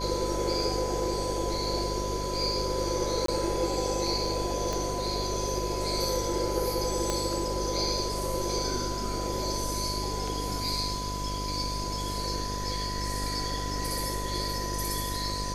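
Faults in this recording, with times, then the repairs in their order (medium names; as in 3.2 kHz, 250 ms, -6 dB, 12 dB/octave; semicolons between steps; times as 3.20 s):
buzz 50 Hz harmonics 14 -35 dBFS
whine 1 kHz -35 dBFS
3.26–3.28 s: dropout 23 ms
4.73 s: pop
7.10 s: pop -14 dBFS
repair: de-click; de-hum 50 Hz, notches 14; band-stop 1 kHz, Q 30; interpolate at 3.26 s, 23 ms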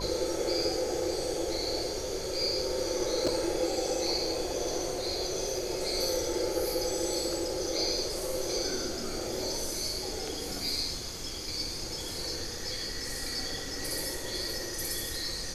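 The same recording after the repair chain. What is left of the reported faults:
4.73 s: pop
7.10 s: pop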